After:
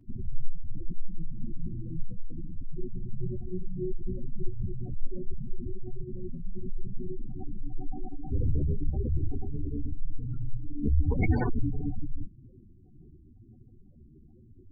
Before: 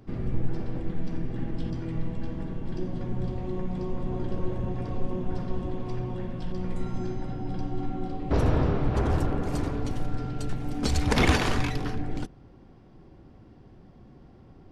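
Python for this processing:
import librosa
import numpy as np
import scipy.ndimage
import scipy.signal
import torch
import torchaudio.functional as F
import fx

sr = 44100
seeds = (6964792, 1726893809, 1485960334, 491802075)

y = fx.spec_gate(x, sr, threshold_db=-10, keep='strong')
y = fx.chorus_voices(y, sr, voices=4, hz=0.95, base_ms=11, depth_ms=3.0, mix_pct=50)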